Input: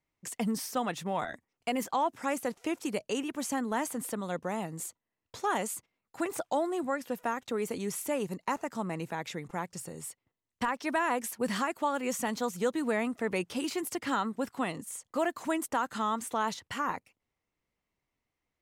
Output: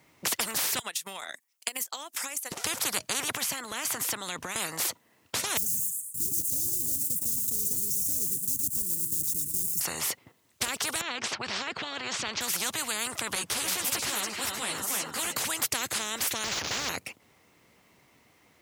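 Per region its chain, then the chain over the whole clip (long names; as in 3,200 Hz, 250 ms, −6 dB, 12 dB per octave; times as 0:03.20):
0:00.79–0:02.52: first difference + downward compressor 12 to 1, threshold −55 dBFS + transient designer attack +9 dB, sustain −11 dB
0:03.33–0:04.56: parametric band 420 Hz −10 dB 1.9 octaves + downward compressor, threshold −43 dBFS
0:05.57–0:09.81: one scale factor per block 3 bits + elliptic band-stop filter 140–8,900 Hz, stop band 80 dB + feedback echo with a high-pass in the loop 114 ms, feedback 31%, high-pass 480 Hz, level −5 dB
0:11.01–0:12.41: low-pass filter 4,400 Hz 24 dB per octave + downward compressor 1.5 to 1, threshold −41 dBFS
0:13.35–0:15.36: repeating echo 308 ms, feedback 32%, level −14 dB + string-ensemble chorus
0:16.44–0:16.89: linear delta modulator 32 kbit/s, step −43 dBFS + leveller curve on the samples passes 1
whole clip: high-pass filter 110 Hz 12 dB per octave; every bin compressed towards the loudest bin 10 to 1; level +7.5 dB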